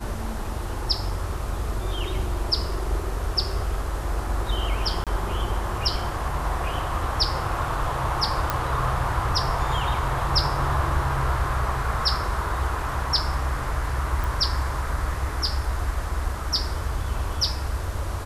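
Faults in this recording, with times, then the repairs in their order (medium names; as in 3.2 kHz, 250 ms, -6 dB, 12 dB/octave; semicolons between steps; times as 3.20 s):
5.04–5.07 s: dropout 27 ms
8.50 s: pop -8 dBFS
14.24 s: pop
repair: de-click; interpolate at 5.04 s, 27 ms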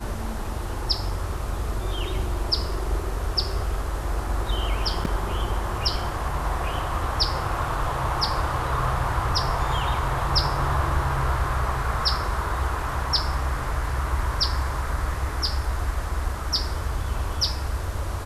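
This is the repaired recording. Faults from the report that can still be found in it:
nothing left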